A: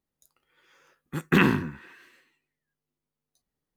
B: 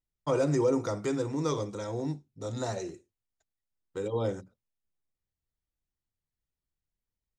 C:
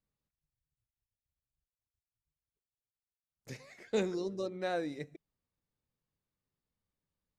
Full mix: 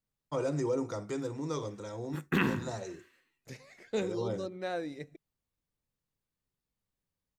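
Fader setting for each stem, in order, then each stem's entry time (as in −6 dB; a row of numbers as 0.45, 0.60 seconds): −8.5, −5.5, −1.0 decibels; 1.00, 0.05, 0.00 seconds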